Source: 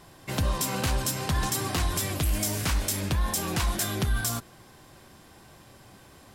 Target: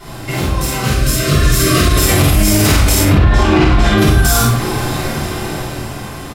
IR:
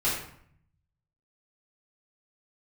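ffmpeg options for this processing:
-filter_complex "[0:a]acompressor=threshold=-38dB:ratio=5,flanger=delay=9:depth=7.8:regen=-78:speed=0.43:shape=triangular,asoftclip=type=hard:threshold=-37dB,asettb=1/sr,asplit=3[link_01][link_02][link_03];[link_01]atrim=end=2.964[link_04];[link_02]atrim=start=2.96:end=3.98,asetpts=PTS-STARTPTS,afade=type=in:duration=0.004:curve=qsin,afade=type=out:start_time=1.016:duration=0.004:curve=qsin,lowpass=3000[link_05];[link_03]atrim=start=3.976[link_06];[link_04][link_05]acrossfade=duration=0.004:curve1=hsin:curve2=qsin[link_07];[link_07][link_06]acrossfade=duration=0.004:curve1=qsin:curve2=hsin,dynaudnorm=framelen=330:gausssize=9:maxgain=11.5dB,asettb=1/sr,asplit=3[link_08][link_09][link_10];[link_08]atrim=end=0.814[link_11];[link_09]atrim=start=0.81:end=1.98,asetpts=PTS-STARTPTS,afade=type=in:duration=0.004:curve=qsin,afade=type=out:start_time=1.166:duration=0.004:curve=qsin,asuperstop=centerf=870:order=20:qfactor=2.5[link_12];[link_10]atrim=start=1.976[link_13];[link_11][link_12]acrossfade=duration=0.004:curve1=hsin:curve2=qsin[link_14];[link_14][link_13]acrossfade=duration=0.004:curve1=qsin:curve2=hsin,asplit=2[link_15][link_16];[link_16]adelay=49,volume=-2.5dB[link_17];[link_15][link_17]amix=inputs=2:normalize=0[link_18];[1:a]atrim=start_sample=2205,afade=type=out:start_time=0.28:duration=0.01,atrim=end_sample=12789[link_19];[link_18][link_19]afir=irnorm=-1:irlink=0,alimiter=level_in=15dB:limit=-1dB:release=50:level=0:latency=1,volume=-1dB"

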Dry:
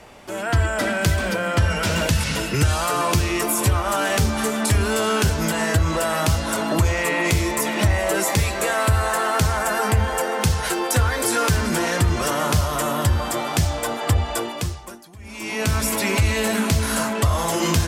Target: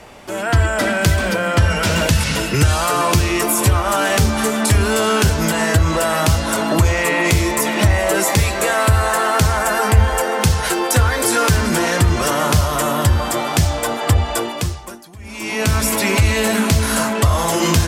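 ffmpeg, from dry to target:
ffmpeg -i in.wav -filter_complex "[0:a]asettb=1/sr,asplit=3[link_01][link_02][link_03];[link_01]atrim=end=9.504[link_04];[link_02]atrim=start=9.5:end=10.26,asetpts=PTS-STARTPTS,afade=type=in:duration=0.004:curve=qsin,afade=type=out:start_time=0.756:duration=0.004:curve=qsin,asubboost=boost=12:cutoff=78[link_05];[link_03]atrim=start=10.256[link_06];[link_04][link_05]acrossfade=duration=0.004:curve1=hsin:curve2=qsin[link_07];[link_07][link_06]acrossfade=duration=0.004:curve1=qsin:curve2=hsin,volume=4.5dB" out.wav

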